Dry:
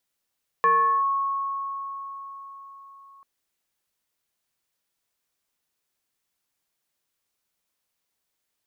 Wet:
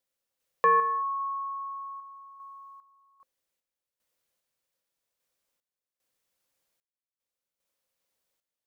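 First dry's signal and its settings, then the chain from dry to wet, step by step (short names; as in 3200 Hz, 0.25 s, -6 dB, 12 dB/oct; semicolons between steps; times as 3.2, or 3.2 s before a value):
FM tone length 2.59 s, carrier 1100 Hz, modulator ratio 0.58, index 0.61, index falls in 0.40 s linear, decay 4.65 s, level -15 dB
bell 530 Hz +11 dB 0.27 oct; random-step tremolo 2.5 Hz, depth 95%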